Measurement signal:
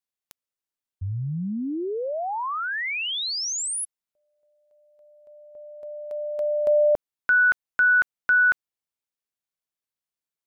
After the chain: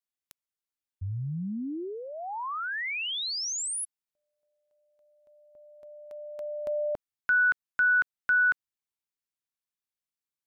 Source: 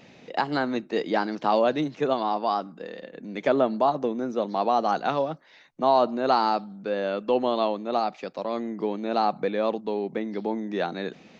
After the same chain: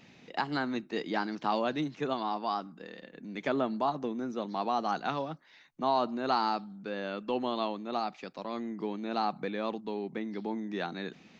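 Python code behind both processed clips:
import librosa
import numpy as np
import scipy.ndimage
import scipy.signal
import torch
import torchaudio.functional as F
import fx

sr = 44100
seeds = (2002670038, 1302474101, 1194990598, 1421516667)

y = fx.peak_eq(x, sr, hz=550.0, db=-7.5, octaves=0.94)
y = F.gain(torch.from_numpy(y), -4.0).numpy()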